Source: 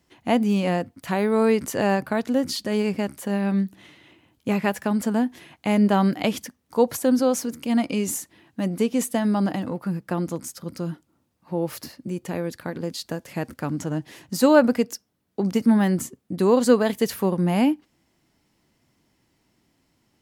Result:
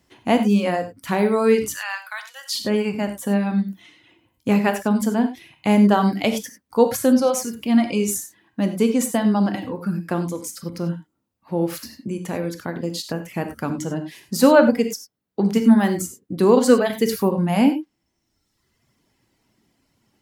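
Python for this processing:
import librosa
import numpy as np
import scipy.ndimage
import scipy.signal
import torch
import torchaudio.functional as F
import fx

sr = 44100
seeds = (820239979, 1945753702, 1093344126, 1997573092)

y = fx.highpass(x, sr, hz=1200.0, slope=24, at=(1.7, 2.55))
y = fx.dereverb_blind(y, sr, rt60_s=1.3)
y = fx.rev_gated(y, sr, seeds[0], gate_ms=120, shape='flat', drr_db=6.5)
y = y * 10.0 ** (3.0 / 20.0)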